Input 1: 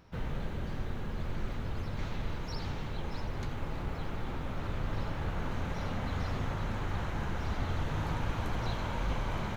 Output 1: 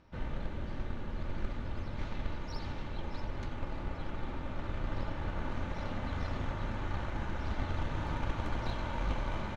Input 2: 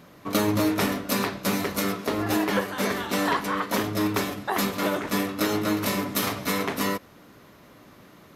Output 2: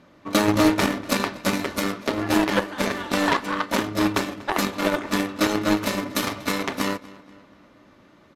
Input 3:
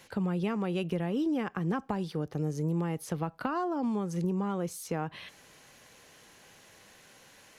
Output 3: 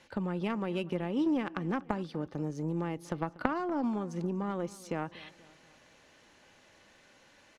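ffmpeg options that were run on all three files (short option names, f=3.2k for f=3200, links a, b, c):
-filter_complex "[0:a]aecho=1:1:3.4:0.31,apsyclip=14dB,aeval=exprs='1.06*(cos(1*acos(clip(val(0)/1.06,-1,1)))-cos(1*PI/2))+0.237*(cos(3*acos(clip(val(0)/1.06,-1,1)))-cos(3*PI/2))':c=same,adynamicsmooth=sensitivity=4.5:basefreq=6.4k,asplit=2[a][b];[b]adelay=240,lowpass=f=4.8k:p=1,volume=-20dB,asplit=2[c][d];[d]adelay=240,lowpass=f=4.8k:p=1,volume=0.51,asplit=2[e][f];[f]adelay=240,lowpass=f=4.8k:p=1,volume=0.51,asplit=2[g][h];[h]adelay=240,lowpass=f=4.8k:p=1,volume=0.51[i];[c][e][g][i]amix=inputs=4:normalize=0[j];[a][j]amix=inputs=2:normalize=0,volume=-7.5dB"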